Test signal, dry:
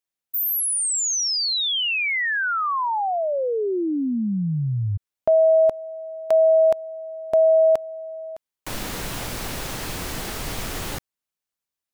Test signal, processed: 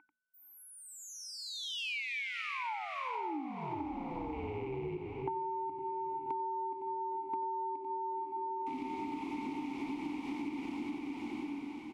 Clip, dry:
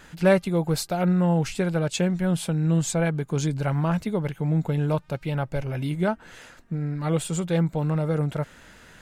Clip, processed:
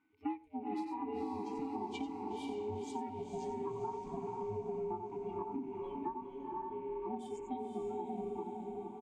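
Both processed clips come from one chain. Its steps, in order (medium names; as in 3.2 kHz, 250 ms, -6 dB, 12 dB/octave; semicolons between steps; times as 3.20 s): rattle on loud lows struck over -33 dBFS, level -30 dBFS; ring modulator 260 Hz; whistle 1.5 kHz -39 dBFS; delay 91 ms -7.5 dB; spectral noise reduction 22 dB; vowel filter u; bass shelf 65 Hz +12 dB; on a send: echo that smears into a reverb 496 ms, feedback 50%, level -5.5 dB; on the sum: compression 16:1, threshold -43 dBFS; hum notches 60/120/180/240 Hz; trim +8 dB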